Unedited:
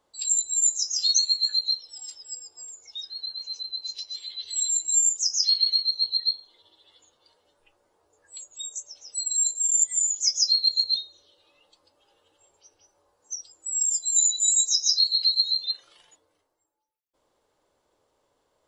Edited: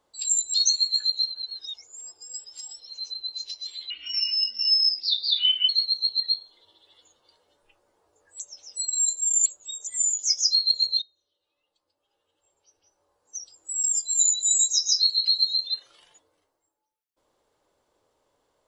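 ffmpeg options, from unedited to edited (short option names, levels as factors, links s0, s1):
-filter_complex "[0:a]asplit=10[s0][s1][s2][s3][s4][s5][s6][s7][s8][s9];[s0]atrim=end=0.542[s10];[s1]atrim=start=1.028:end=1.762[s11];[s2]atrim=start=1.758:end=3.422,asetpts=PTS-STARTPTS,areverse[s12];[s3]atrim=start=3.418:end=4.394[s13];[s4]atrim=start=4.39:end=5.66,asetpts=PTS-STARTPTS,asetrate=31311,aresample=44100,atrim=end_sample=78883,asetpts=PTS-STARTPTS[s14];[s5]atrim=start=5.656:end=8.372[s15];[s6]atrim=start=8.778:end=9.842[s16];[s7]atrim=start=8.368:end=8.782[s17];[s8]atrim=start=9.838:end=10.99,asetpts=PTS-STARTPTS,afade=t=out:st=1.148:d=0.004:c=hsin:silence=0.112202[s18];[s9]atrim=start=10.99,asetpts=PTS-STARTPTS,afade=t=in:d=2.7:c=qua:silence=0.112202[s19];[s10][s11]acrossfade=d=0.004:c1=hsin:c2=hsin[s20];[s20][s12]acrossfade=d=0.004:c1=hsin:c2=hsin[s21];[s21][s13]acrossfade=d=0.004:c1=hsin:c2=hsin[s22];[s22][s14]acrossfade=d=0.004:c1=hsin:c2=hsin[s23];[s23][s15]acrossfade=d=0.004:c1=hsin:c2=hsin[s24];[s24][s16]acrossfade=d=0.004:c1=hsin:c2=hsin[s25];[s25][s17]acrossfade=d=0.004:c1=hsin:c2=hsin[s26];[s18][s19]concat=n=2:v=0:a=1[s27];[s26][s27]acrossfade=d=0.004:c1=hsin:c2=hsin"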